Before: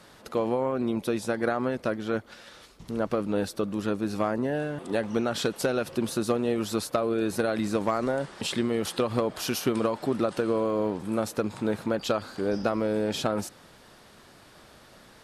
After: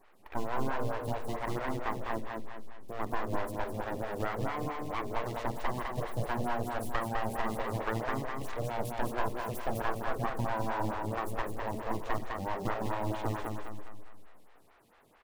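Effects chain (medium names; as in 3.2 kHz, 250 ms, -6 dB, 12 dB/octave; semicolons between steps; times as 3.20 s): high-pass 49 Hz 24 dB/octave; peaking EQ 5.1 kHz -15 dB 1.7 oct; de-hum 72.19 Hz, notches 7; full-wave rectifier; in parallel at -9 dB: bit crusher 6-bit; on the sum: feedback delay 204 ms, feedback 43%, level -4 dB; on a send at -10 dB: reverberation RT60 0.70 s, pre-delay 42 ms; on the sum: lamp-driven phase shifter 4.5 Hz; trim -4 dB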